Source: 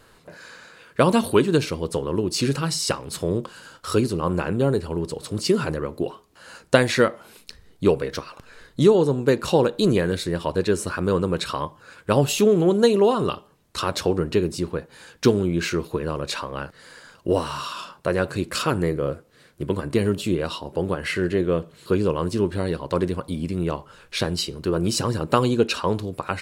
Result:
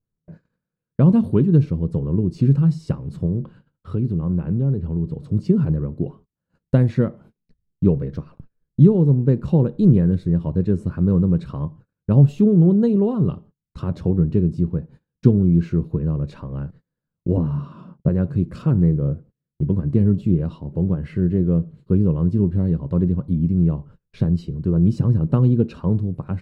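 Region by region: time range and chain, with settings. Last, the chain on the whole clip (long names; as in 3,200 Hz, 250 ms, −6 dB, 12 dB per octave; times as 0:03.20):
0:03.26–0:05.15: high shelf with overshoot 4,500 Hz −7.5 dB, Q 1.5 + downward compressor 2 to 1, threshold −25 dBFS
0:17.37–0:18.09: high-pass filter 150 Hz + spectral tilt −3.5 dB per octave
whole clip: parametric band 160 Hz +13 dB 1.6 octaves; noise gate −38 dBFS, range −32 dB; spectral tilt −4.5 dB per octave; level −13.5 dB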